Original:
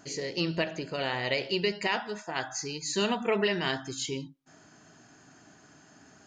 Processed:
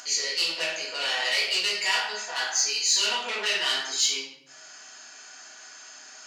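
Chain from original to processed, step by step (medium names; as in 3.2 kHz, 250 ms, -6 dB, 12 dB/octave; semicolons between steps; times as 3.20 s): saturation -27 dBFS, distortion -10 dB; peaking EQ 5.3 kHz +10.5 dB 2.5 oct; simulated room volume 140 m³, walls mixed, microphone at 1.8 m; upward compressor, threshold -37 dBFS; high-pass 850 Hz 12 dB/octave; trim -1.5 dB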